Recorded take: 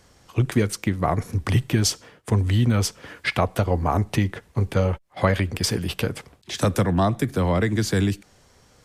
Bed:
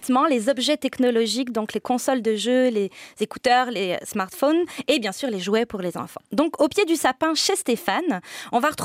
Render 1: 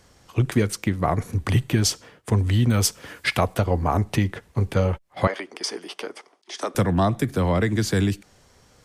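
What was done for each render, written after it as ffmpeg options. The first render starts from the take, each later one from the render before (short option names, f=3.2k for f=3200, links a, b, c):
-filter_complex "[0:a]asettb=1/sr,asplit=3[a][b][c];[a]atrim=end=1.214[d];[b]atrim=start=1.21:end=1.74,asetpts=PTS-STARTPTS,afade=t=in:d=0.004:c=qsin,afade=t=out:st=0.526:d=0.004:c=qsin,bandreject=f=5.3k:w=12[e];[c]atrim=start=1.736[f];[d][e]acrossfade=d=0.004:c1=hsin:c2=qsin[g];[g][f]acrossfade=d=0.004:c1=qsin:c2=hsin,asettb=1/sr,asplit=3[h][i][j];[h]atrim=end=2.704[k];[i]atrim=start=2.7:end=3.54,asetpts=PTS-STARTPTS,afade=t=in:d=0.004:c=qsin,afade=t=out:st=0.836:d=0.004:c=qsin,highshelf=f=6.3k:g=10[l];[j]atrim=start=3.536[m];[k][l]acrossfade=d=0.004:c1=hsin:c2=qsin[n];[n][m]acrossfade=d=0.004:c1=qsin:c2=hsin,asettb=1/sr,asplit=3[o][p][q];[o]atrim=end=5.274[r];[p]atrim=start=5.27:end=6.75,asetpts=PTS-STARTPTS,afade=t=in:d=0.004:c=qsin,afade=t=out:st=1.476:d=0.004:c=qsin,highpass=f=360:w=0.5412,highpass=f=360:w=1.3066,equalizer=f=510:t=q:w=4:g=-8,equalizer=f=1.6k:t=q:w=4:g=-6,equalizer=f=2.6k:t=q:w=4:g=-7,equalizer=f=3.9k:t=q:w=4:g=-8,equalizer=f=7.5k:t=q:w=4:g=-10,lowpass=f=8.7k:w=0.5412,lowpass=f=8.7k:w=1.3066[s];[q]atrim=start=6.746[t];[r][s]acrossfade=d=0.004:c1=hsin:c2=qsin[u];[u][t]acrossfade=d=0.004:c1=qsin:c2=hsin"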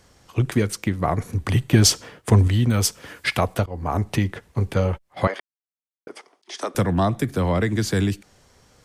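-filter_complex "[0:a]asettb=1/sr,asplit=3[a][b][c];[a]atrim=end=1.734[d];[b]atrim=start=1.73:end=2.48,asetpts=PTS-STARTPTS,afade=t=in:d=0.004:c=qsin,afade=t=out:st=0.746:d=0.004:c=qsin,acontrast=57[e];[c]atrim=start=2.476[f];[d][e]acrossfade=d=0.004:c1=hsin:c2=qsin[g];[g][f]acrossfade=d=0.004:c1=qsin:c2=hsin,asplit=4[h][i][j][k];[h]atrim=end=3.66,asetpts=PTS-STARTPTS,afade=t=out:st=3.656:d=0.004:c=hsin:silence=0.0891251[l];[i]atrim=start=3.66:end=5.4,asetpts=PTS-STARTPTS,afade=t=in:d=0.48:c=qsin:silence=0.0891251,afade=t=out:st=1.736:d=0.004:c=hsin[m];[j]atrim=start=5.4:end=6.07,asetpts=PTS-STARTPTS,volume=0[n];[k]atrim=start=6.07,asetpts=PTS-STARTPTS,afade=t=in:d=0.004:c=hsin[o];[l][m][n][o]concat=n=4:v=0:a=1"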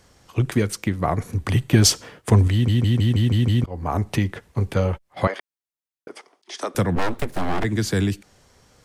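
-filter_complex "[0:a]asplit=3[a][b][c];[a]afade=t=out:st=6.95:d=0.02[d];[b]aeval=exprs='abs(val(0))':c=same,afade=t=in:st=6.95:d=0.02,afade=t=out:st=7.63:d=0.02[e];[c]afade=t=in:st=7.63:d=0.02[f];[d][e][f]amix=inputs=3:normalize=0,asplit=8[g][h][i][j][k][l][m][n];[g]atrim=end=2.682[o];[h]atrim=start=2.518:end=2.682[p];[i]atrim=start=2.518:end=2.682[q];[j]atrim=start=2.518:end=2.682[r];[k]atrim=start=2.518:end=2.682[s];[l]atrim=start=2.518:end=2.682[t];[m]atrim=start=2.518:end=2.682[u];[n]atrim=start=3.638[v];[o][p]acrossfade=d=0.004:c1=hsin:c2=hsin[w];[w][q]acrossfade=d=0.004:c1=hsin:c2=hsin[x];[x][r]acrossfade=d=0.004:c1=hsin:c2=hsin[y];[y][s]acrossfade=d=0.004:c1=hsin:c2=hsin[z];[z][t]acrossfade=d=0.004:c1=hsin:c2=hsin[aa];[aa][u]acrossfade=d=0.004:c1=hsin:c2=hsin[ab];[ab][v]acrossfade=d=0.004:c1=hsin:c2=hsin"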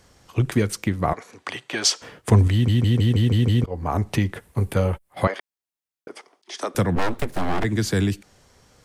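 -filter_complex "[0:a]asettb=1/sr,asplit=3[a][b][c];[a]atrim=end=1.134[d];[b]atrim=start=1.13:end=2.02,asetpts=PTS-STARTPTS,afade=t=in:d=0.004:c=qsin,afade=t=out:st=0.886:d=0.004:c=qsin,highpass=610,lowpass=6.5k[e];[c]atrim=start=2.016[f];[d][e]acrossfade=d=0.004:c1=hsin:c2=qsin[g];[g][f]acrossfade=d=0.004:c1=qsin:c2=hsin,asettb=1/sr,asplit=3[h][i][j];[h]atrim=end=2.864[k];[i]atrim=start=2.86:end=3.74,asetpts=PTS-STARTPTS,afade=t=in:d=0.004:c=qsin,afade=t=out:st=0.876:d=0.004:c=qsin,equalizer=f=450:w=5.2:g=9[l];[j]atrim=start=3.736[m];[k][l]acrossfade=d=0.004:c1=hsin:c2=qsin[n];[n][m]acrossfade=d=0.004:c1=qsin:c2=hsin,asettb=1/sr,asplit=3[o][p][q];[o]atrim=end=4.344[r];[p]atrim=start=4.34:end=5.24,asetpts=PTS-STARTPTS,afade=t=in:d=0.004:c=qsin,afade=t=out:st=0.896:d=0.004:c=qsin,highshelf=f=7.8k:t=q:w=1.5:g=7.5[s];[q]atrim=start=5.236[t];[r][s]acrossfade=d=0.004:c1=hsin:c2=qsin[u];[u][t]acrossfade=d=0.004:c1=qsin:c2=hsin"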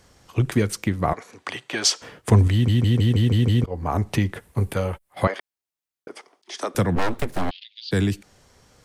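-filter_complex "[0:a]asettb=1/sr,asplit=3[a][b][c];[a]atrim=end=4.734[d];[b]atrim=start=4.73:end=5.22,asetpts=PTS-STARTPTS,afade=t=in:d=0.004:c=qsin,afade=t=out:st=0.486:d=0.004:c=qsin,lowshelf=f=490:g=-5.5[e];[c]atrim=start=5.216[f];[d][e]acrossfade=d=0.004:c1=hsin:c2=qsin[g];[g][f]acrossfade=d=0.004:c1=qsin:c2=hsin,asplit=3[h][i][j];[h]afade=t=out:st=7.49:d=0.02[k];[i]asuperpass=centerf=3600:order=8:qfactor=1.8,afade=t=in:st=7.49:d=0.02,afade=t=out:st=7.91:d=0.02[l];[j]afade=t=in:st=7.91:d=0.02[m];[k][l][m]amix=inputs=3:normalize=0"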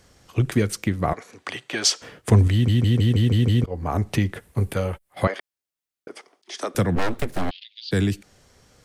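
-af "equalizer=f=950:w=2.7:g=-3.5"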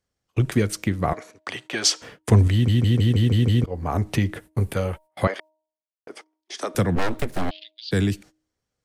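-af "agate=range=-26dB:threshold=-42dB:ratio=16:detection=peak,bandreject=f=312.5:t=h:w=4,bandreject=f=625:t=h:w=4,bandreject=f=937.5:t=h:w=4"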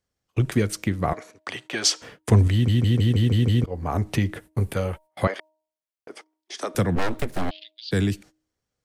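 -af "volume=-1dB"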